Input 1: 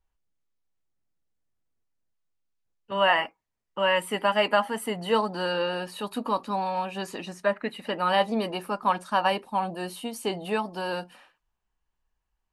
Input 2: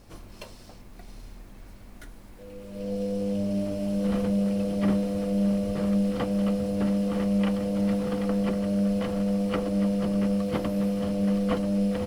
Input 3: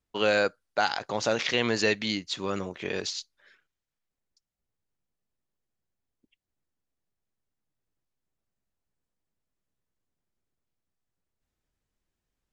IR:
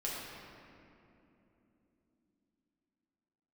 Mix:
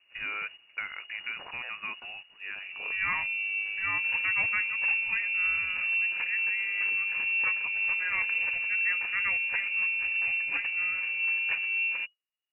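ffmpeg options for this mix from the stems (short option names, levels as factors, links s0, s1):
-filter_complex "[0:a]volume=0.316,asplit=2[s0][s1];[1:a]volume=0.596[s2];[2:a]acrossover=split=530|1600[s3][s4][s5];[s3]acompressor=threshold=0.0126:ratio=4[s6];[s4]acompressor=threshold=0.0316:ratio=4[s7];[s5]acompressor=threshold=0.01:ratio=4[s8];[s6][s7][s8]amix=inputs=3:normalize=0,adynamicequalizer=threshold=0.00708:dfrequency=2000:dqfactor=0.7:tfrequency=2000:tqfactor=0.7:attack=5:release=100:ratio=0.375:range=2:mode=cutabove:tftype=highshelf,volume=0.562[s9];[s1]apad=whole_len=552344[s10];[s9][s10]sidechaincompress=threshold=0.00282:ratio=8:attack=7.4:release=476[s11];[s0][s2][s11]amix=inputs=3:normalize=0,lowpass=f=2500:t=q:w=0.5098,lowpass=f=2500:t=q:w=0.6013,lowpass=f=2500:t=q:w=0.9,lowpass=f=2500:t=q:w=2.563,afreqshift=-2900,agate=range=0.398:threshold=0.00631:ratio=16:detection=peak"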